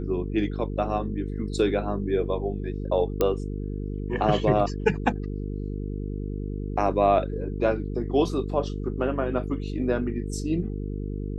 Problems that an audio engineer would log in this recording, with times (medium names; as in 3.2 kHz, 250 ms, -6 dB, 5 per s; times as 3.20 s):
buzz 50 Hz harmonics 9 -31 dBFS
3.21 s: pop -10 dBFS